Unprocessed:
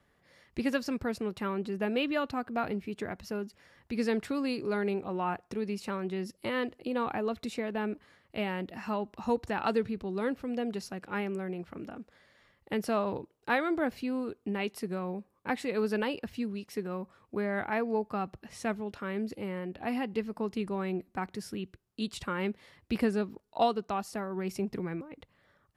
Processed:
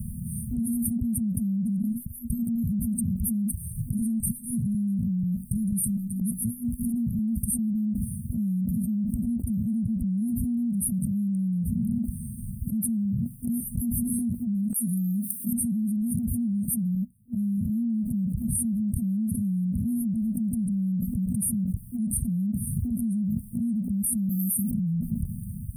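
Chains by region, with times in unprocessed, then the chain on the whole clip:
0:01.82–0:07.59: downward compressor 4 to 1, threshold −43 dBFS + step-sequenced phaser 4.1 Hz 230–1,500 Hz
0:14.74–0:15.53: high-pass filter 120 Hz + bass and treble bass −9 dB, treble +15 dB + comb filter 4.2 ms, depth 84%
0:16.95–0:17.58: high-shelf EQ 9,600 Hz +9 dB + expander for the loud parts 2.5 to 1, over −50 dBFS
0:24.29–0:24.71: high-pass with resonance 500 Hz, resonance Q 2 + parametric band 6,500 Hz −13 dB 1.2 octaves + every bin compressed towards the loudest bin 4 to 1
whole clip: brick-wall band-stop 240–8,500 Hz; parametric band 480 Hz +11.5 dB 0.22 octaves; envelope flattener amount 100%

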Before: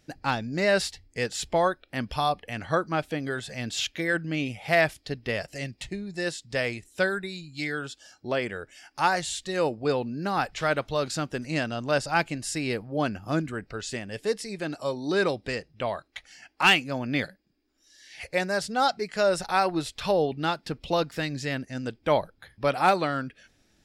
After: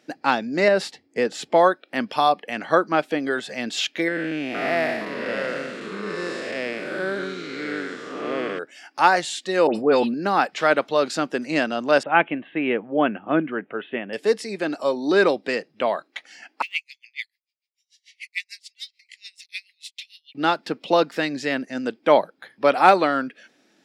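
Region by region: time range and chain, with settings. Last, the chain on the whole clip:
0:00.68–0:01.53: tilt shelving filter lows +4.5 dB, about 1,100 Hz + downward compressor 3 to 1, threshold −22 dBFS
0:04.08–0:08.59: spectrum smeared in time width 307 ms + delay with pitch and tempo change per echo 463 ms, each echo −4 semitones, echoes 2, each echo −6 dB + one half of a high-frequency compander encoder only
0:09.67–0:10.14: all-pass dispersion highs, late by 82 ms, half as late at 2,200 Hz + level that may fall only so fast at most 37 dB per second
0:12.03–0:14.13: Butterworth low-pass 3,400 Hz 96 dB per octave + one half of a high-frequency compander decoder only
0:16.62–0:20.35: Butterworth high-pass 2,000 Hz 96 dB per octave + de-essing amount 70% + tremolo with a sine in dB 6.8 Hz, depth 31 dB
whole clip: high-pass filter 220 Hz 24 dB per octave; high-shelf EQ 5,400 Hz −10.5 dB; level +7.5 dB

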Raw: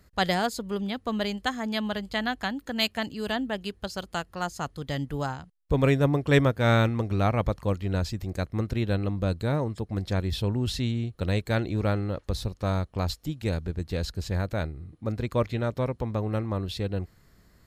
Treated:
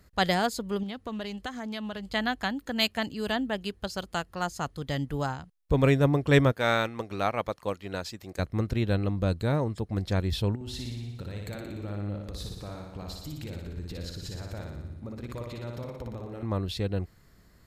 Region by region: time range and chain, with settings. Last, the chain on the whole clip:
0:00.83–0:02.13: downward compressor 2.5 to 1, threshold −34 dBFS + highs frequency-modulated by the lows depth 0.12 ms
0:06.52–0:08.39: high-pass filter 530 Hz 6 dB per octave + transient designer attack +2 dB, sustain −3 dB
0:10.55–0:16.43: downward compressor 8 to 1, threshold −35 dBFS + flutter between parallel walls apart 10.1 metres, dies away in 1 s
whole clip: no processing

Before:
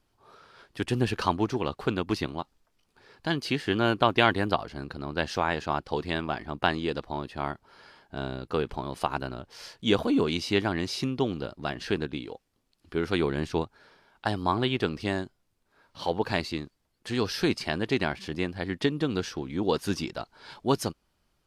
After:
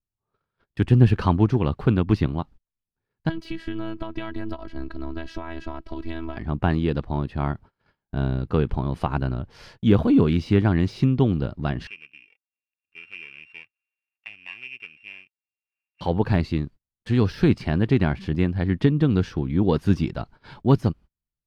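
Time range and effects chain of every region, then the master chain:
0:03.29–0:06.37: downward compressor 5 to 1, threshold −30 dBFS + phases set to zero 326 Hz
0:11.87–0:16.01: samples sorted by size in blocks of 16 samples + resonant band-pass 2,500 Hz, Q 9.7 + upward compression, threshold −43 dBFS
whole clip: noise gate −49 dBFS, range −32 dB; de-essing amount 85%; bass and treble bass +14 dB, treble −11 dB; level +1.5 dB

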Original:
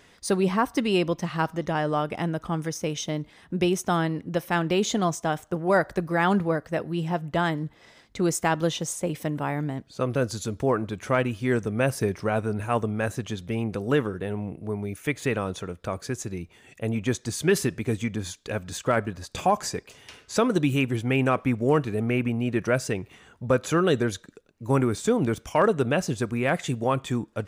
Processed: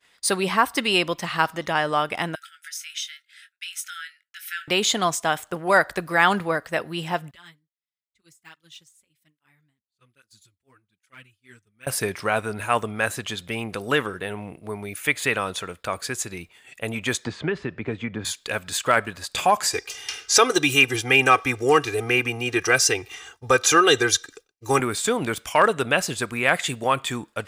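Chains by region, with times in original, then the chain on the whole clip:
0:02.35–0:04.68: downward compressor 2 to 1, threshold −39 dBFS + linear-phase brick-wall high-pass 1,300 Hz + double-tracking delay 22 ms −8.5 dB
0:07.31–0:11.87: de-essing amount 70% + guitar amp tone stack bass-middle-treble 6-0-2 + through-zero flanger with one copy inverted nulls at 1.2 Hz, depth 6.9 ms
0:17.25–0:18.25: head-to-tape spacing loss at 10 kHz 45 dB + multiband upward and downward compressor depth 100%
0:19.73–0:24.80: parametric band 5,800 Hz +14 dB 0.37 octaves + comb filter 2.5 ms, depth 89%
whole clip: tilt shelving filter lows −8.5 dB, about 680 Hz; downward expander −42 dBFS; parametric band 6,000 Hz −7 dB 0.3 octaves; level +2.5 dB

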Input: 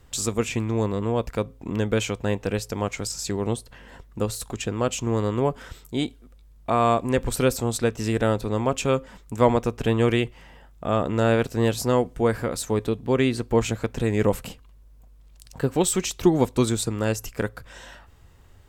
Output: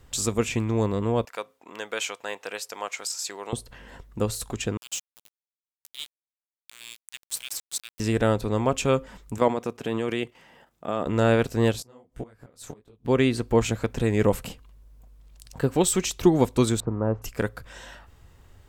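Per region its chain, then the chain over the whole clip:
0:01.25–0:03.53: high-pass filter 770 Hz + one half of a high-frequency compander decoder only
0:04.77–0:08.00: inverse Chebyshev high-pass filter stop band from 630 Hz, stop band 70 dB + centre clipping without the shift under −35.5 dBFS + upward compression, threshold −48 dBFS
0:09.38–0:11.06: high-pass filter 180 Hz + output level in coarse steps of 9 dB
0:11.72–0:13.05: gate with flip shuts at −17 dBFS, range −27 dB + micro pitch shift up and down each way 57 cents
0:16.80–0:17.22: spike at every zero crossing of −19.5 dBFS + Chebyshev low-pass filter 1,100 Hz, order 3
whole clip: no processing

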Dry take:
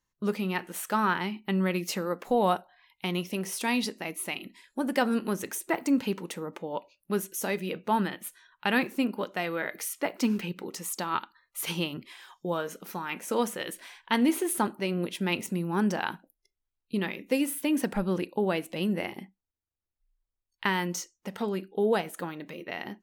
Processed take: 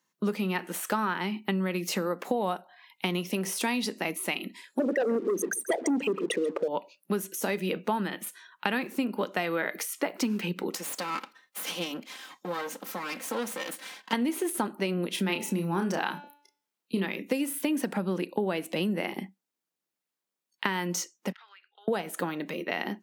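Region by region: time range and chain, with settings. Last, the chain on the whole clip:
0:04.79–0:06.68: spectral envelope exaggerated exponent 3 + leveller curve on the samples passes 2 + single-tap delay 136 ms −19 dB
0:10.75–0:14.13: lower of the sound and its delayed copy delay 3.8 ms + low-shelf EQ 150 Hz −11 dB + downward compressor 2 to 1, threshold −40 dBFS
0:15.09–0:17.05: double-tracking delay 31 ms −6 dB + hum removal 289.8 Hz, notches 24
0:21.32–0:21.88: high-pass filter 1,400 Hz 24 dB per octave + high-frequency loss of the air 280 metres + downward compressor 4 to 1, threshold −58 dBFS
whole clip: downward compressor 10 to 1, threshold −31 dBFS; Butterworth high-pass 160 Hz; de-essing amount 65%; level +6.5 dB

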